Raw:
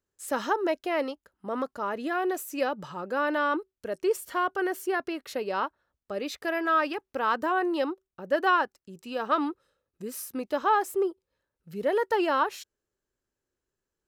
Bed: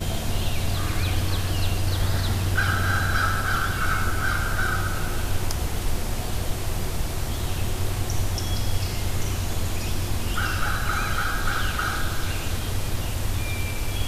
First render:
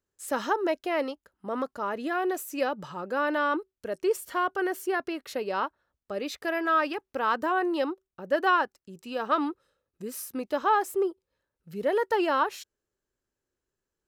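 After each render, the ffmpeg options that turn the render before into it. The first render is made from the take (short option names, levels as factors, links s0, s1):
-af anull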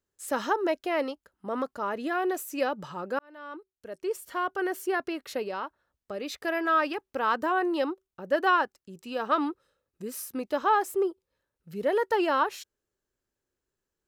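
-filter_complex "[0:a]asettb=1/sr,asplit=3[s0][s1][s2];[s0]atrim=end=5.474[s3];[s1]atrim=start=5.47:end=6.35,asetpts=PTS-STARTPTS,afade=t=in:d=0.004:c=qsin,afade=t=out:st=0.876:d=0.004:c=qsin,acompressor=threshold=0.0282:ratio=2.5:attack=3.2:release=140:knee=1:detection=peak[s4];[s2]atrim=start=6.346[s5];[s3][s4]acrossfade=d=0.004:c1=hsin:c2=qsin[s6];[s6][s5]acrossfade=d=0.004:c1=qsin:c2=hsin,asplit=2[s7][s8];[s7]atrim=end=3.19,asetpts=PTS-STARTPTS,afade=t=out:st=3.186:d=0.004:c=hsin[s9];[s8]atrim=start=3.19,asetpts=PTS-STARTPTS,afade=t=in:d=1.65[s10];[s9][s10]concat=n=2:v=0:a=1"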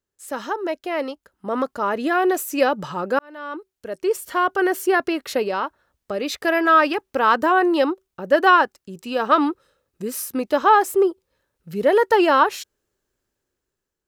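-af "dynaudnorm=f=510:g=5:m=3.16"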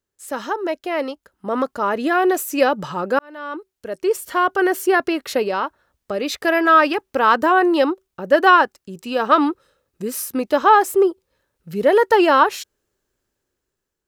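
-af "volume=1.26"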